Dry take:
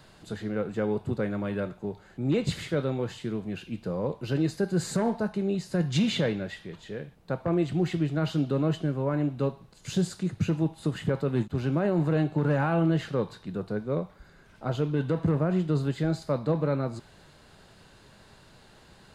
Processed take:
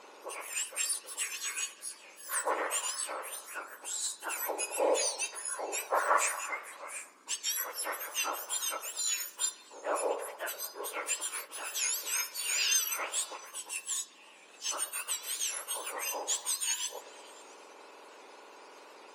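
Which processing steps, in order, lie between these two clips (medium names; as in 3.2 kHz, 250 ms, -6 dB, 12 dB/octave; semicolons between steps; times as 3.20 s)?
spectrum inverted on a logarithmic axis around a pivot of 2 kHz; low-pass 7.9 kHz 12 dB/octave; on a send: repeats whose band climbs or falls 112 ms, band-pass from 520 Hz, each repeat 0.7 oct, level -10 dB; on the sum: warped record 78 rpm, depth 100 cents; trim +6 dB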